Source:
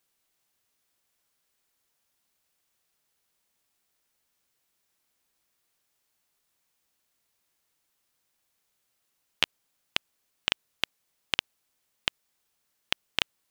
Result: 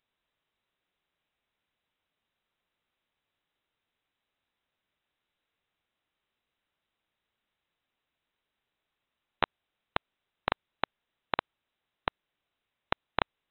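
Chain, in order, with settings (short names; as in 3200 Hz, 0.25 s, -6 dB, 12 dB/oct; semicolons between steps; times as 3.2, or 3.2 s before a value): inverted band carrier 3900 Hz; gain -2 dB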